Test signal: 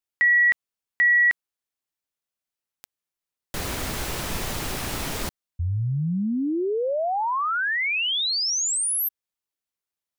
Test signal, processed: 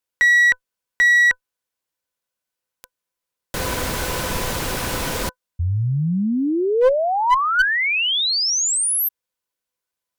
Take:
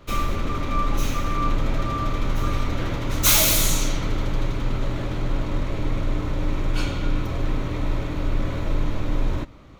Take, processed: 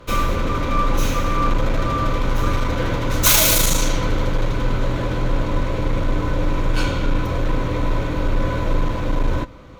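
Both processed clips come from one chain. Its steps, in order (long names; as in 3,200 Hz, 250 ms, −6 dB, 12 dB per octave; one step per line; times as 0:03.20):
hollow resonant body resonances 510/1,000/1,500 Hz, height 11 dB, ringing for 85 ms
asymmetric clip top −17.5 dBFS
level +4.5 dB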